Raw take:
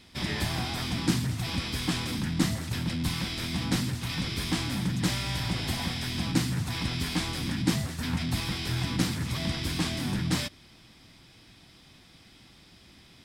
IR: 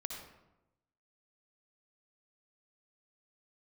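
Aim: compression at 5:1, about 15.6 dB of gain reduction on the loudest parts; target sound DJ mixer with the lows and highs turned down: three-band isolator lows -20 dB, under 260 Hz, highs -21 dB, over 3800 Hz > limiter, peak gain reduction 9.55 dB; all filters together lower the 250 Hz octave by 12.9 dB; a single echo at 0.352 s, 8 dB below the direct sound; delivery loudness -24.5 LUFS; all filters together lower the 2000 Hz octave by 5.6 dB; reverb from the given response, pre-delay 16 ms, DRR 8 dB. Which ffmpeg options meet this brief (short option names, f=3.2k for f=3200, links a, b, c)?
-filter_complex "[0:a]equalizer=f=250:t=o:g=-8.5,equalizer=f=2k:t=o:g=-6,acompressor=threshold=-43dB:ratio=5,aecho=1:1:352:0.398,asplit=2[a][b];[1:a]atrim=start_sample=2205,adelay=16[c];[b][c]afir=irnorm=-1:irlink=0,volume=-7dB[d];[a][d]amix=inputs=2:normalize=0,acrossover=split=260 3800:gain=0.1 1 0.0891[e][f][g];[e][f][g]amix=inputs=3:normalize=0,volume=29dB,alimiter=limit=-15.5dB:level=0:latency=1"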